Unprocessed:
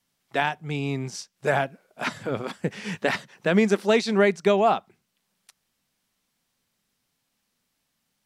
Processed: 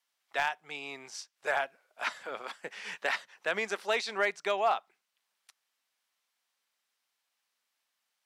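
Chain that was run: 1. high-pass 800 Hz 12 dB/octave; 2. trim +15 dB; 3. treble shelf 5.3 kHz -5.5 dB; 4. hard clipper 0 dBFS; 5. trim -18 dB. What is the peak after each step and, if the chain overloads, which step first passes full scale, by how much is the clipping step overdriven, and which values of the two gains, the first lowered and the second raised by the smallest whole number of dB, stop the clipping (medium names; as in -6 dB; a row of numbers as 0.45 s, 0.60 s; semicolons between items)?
-9.5 dBFS, +5.5 dBFS, +5.0 dBFS, 0.0 dBFS, -18.0 dBFS; step 2, 5.0 dB; step 2 +10 dB, step 5 -13 dB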